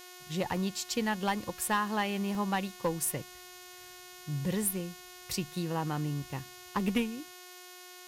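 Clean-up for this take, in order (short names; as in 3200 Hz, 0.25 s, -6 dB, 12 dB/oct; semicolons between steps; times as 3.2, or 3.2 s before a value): clip repair -21.5 dBFS; de-hum 361.9 Hz, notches 20; interpolate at 2.35/5.22, 1.5 ms; denoiser 28 dB, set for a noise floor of -50 dBFS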